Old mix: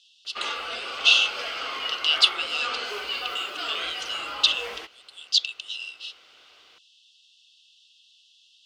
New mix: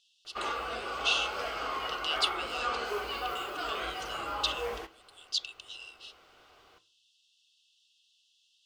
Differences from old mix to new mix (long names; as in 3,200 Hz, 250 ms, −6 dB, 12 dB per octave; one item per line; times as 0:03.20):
background: send on
master: remove meter weighting curve D